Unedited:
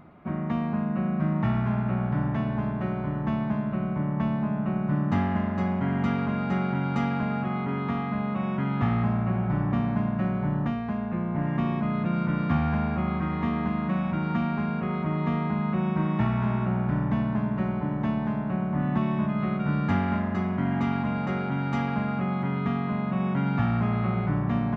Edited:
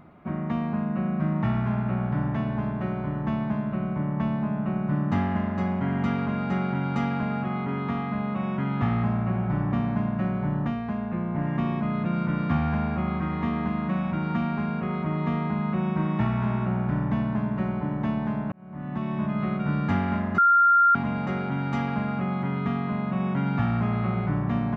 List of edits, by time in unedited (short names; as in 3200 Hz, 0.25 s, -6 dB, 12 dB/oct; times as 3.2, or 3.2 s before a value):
18.52–19.34 fade in
20.38–20.95 bleep 1390 Hz -14.5 dBFS